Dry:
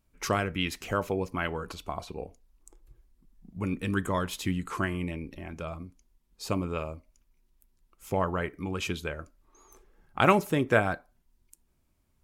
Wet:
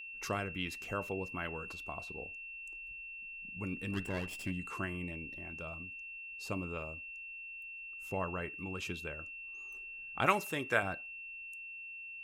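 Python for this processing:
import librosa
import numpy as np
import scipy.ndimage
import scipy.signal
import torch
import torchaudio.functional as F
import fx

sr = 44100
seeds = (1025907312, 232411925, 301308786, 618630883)

y = fx.lower_of_two(x, sr, delay_ms=0.38, at=(3.92, 4.52))
y = fx.tilt_shelf(y, sr, db=-6.5, hz=650.0, at=(10.26, 10.83))
y = y + 10.0 ** (-35.0 / 20.0) * np.sin(2.0 * np.pi * 2700.0 * np.arange(len(y)) / sr)
y = y * 10.0 ** (-9.0 / 20.0)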